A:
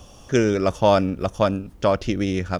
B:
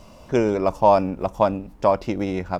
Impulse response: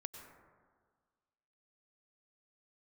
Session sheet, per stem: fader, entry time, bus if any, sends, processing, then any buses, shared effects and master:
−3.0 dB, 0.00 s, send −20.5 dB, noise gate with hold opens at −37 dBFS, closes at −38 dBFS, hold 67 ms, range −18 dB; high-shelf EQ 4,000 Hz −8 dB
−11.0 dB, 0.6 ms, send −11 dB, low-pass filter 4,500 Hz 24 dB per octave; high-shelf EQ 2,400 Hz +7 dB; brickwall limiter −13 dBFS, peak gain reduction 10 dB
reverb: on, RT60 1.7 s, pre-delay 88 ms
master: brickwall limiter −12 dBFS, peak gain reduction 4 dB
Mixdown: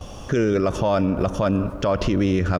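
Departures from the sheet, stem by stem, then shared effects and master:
stem A −3.0 dB → +8.5 dB
reverb return +9.5 dB

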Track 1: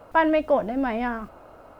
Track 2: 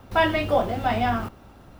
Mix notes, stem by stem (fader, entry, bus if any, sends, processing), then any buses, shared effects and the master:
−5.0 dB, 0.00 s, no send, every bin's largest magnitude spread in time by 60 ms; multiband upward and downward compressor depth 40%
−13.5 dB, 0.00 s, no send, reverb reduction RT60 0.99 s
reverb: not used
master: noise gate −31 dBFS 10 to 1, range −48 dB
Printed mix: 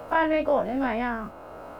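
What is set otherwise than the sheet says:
stem 2 −13.5 dB → −21.5 dB
master: missing noise gate −31 dBFS 10 to 1, range −48 dB

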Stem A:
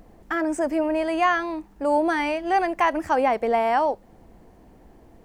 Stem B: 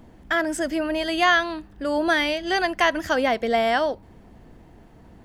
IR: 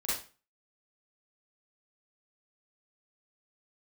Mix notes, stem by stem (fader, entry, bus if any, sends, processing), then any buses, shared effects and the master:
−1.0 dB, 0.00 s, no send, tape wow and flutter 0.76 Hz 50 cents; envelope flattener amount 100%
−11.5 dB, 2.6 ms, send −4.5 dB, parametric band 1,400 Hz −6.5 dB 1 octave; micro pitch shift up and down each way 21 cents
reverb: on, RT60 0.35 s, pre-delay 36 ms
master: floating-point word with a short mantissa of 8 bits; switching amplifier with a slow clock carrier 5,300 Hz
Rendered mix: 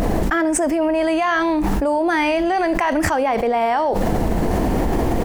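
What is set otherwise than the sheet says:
stem B: polarity flipped
master: missing switching amplifier with a slow clock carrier 5,300 Hz

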